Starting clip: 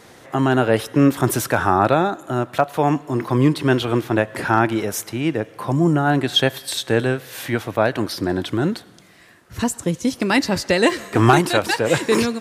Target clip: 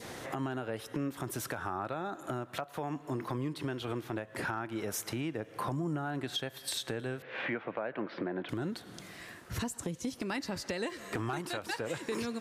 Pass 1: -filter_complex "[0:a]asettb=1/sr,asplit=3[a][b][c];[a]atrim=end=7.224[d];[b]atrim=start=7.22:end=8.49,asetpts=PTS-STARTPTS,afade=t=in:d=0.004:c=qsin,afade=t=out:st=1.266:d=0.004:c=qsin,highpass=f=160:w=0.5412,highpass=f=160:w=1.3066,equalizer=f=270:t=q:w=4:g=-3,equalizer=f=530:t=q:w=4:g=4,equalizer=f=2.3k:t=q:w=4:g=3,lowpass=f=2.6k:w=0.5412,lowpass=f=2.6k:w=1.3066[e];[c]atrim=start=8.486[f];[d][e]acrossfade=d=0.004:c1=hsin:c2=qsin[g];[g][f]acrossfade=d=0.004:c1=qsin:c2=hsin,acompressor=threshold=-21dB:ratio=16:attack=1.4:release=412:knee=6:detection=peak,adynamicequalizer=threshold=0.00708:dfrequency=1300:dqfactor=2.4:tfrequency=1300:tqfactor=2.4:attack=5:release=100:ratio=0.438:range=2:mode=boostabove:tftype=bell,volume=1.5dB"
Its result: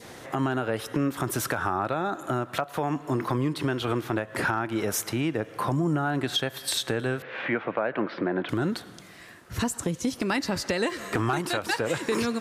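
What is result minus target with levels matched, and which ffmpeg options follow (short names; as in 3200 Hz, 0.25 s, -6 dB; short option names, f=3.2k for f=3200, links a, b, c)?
compressor: peak gain reduction -9 dB
-filter_complex "[0:a]asettb=1/sr,asplit=3[a][b][c];[a]atrim=end=7.224[d];[b]atrim=start=7.22:end=8.49,asetpts=PTS-STARTPTS,afade=t=in:d=0.004:c=qsin,afade=t=out:st=1.266:d=0.004:c=qsin,highpass=f=160:w=0.5412,highpass=f=160:w=1.3066,equalizer=f=270:t=q:w=4:g=-3,equalizer=f=530:t=q:w=4:g=4,equalizer=f=2.3k:t=q:w=4:g=3,lowpass=f=2.6k:w=0.5412,lowpass=f=2.6k:w=1.3066[e];[c]atrim=start=8.486[f];[d][e]acrossfade=d=0.004:c1=hsin:c2=qsin[g];[g][f]acrossfade=d=0.004:c1=qsin:c2=hsin,acompressor=threshold=-30.5dB:ratio=16:attack=1.4:release=412:knee=6:detection=peak,adynamicequalizer=threshold=0.00708:dfrequency=1300:dqfactor=2.4:tfrequency=1300:tqfactor=2.4:attack=5:release=100:ratio=0.438:range=2:mode=boostabove:tftype=bell,volume=1.5dB"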